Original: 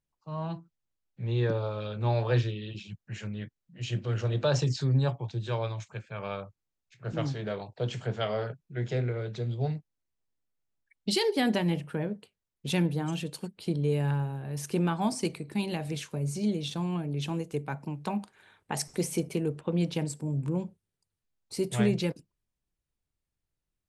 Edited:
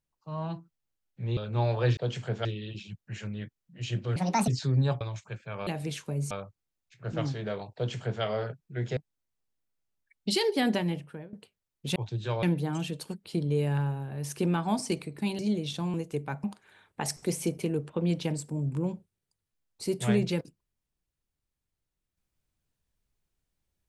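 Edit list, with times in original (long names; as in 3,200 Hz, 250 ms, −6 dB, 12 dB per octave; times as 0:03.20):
0:01.37–0:01.85: remove
0:04.16–0:04.65: play speed 154%
0:05.18–0:05.65: move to 0:12.76
0:07.75–0:08.23: duplicate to 0:02.45
0:08.97–0:09.77: remove
0:11.52–0:12.13: fade out, to −20.5 dB
0:15.72–0:16.36: move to 0:06.31
0:16.91–0:17.34: remove
0:17.84–0:18.15: remove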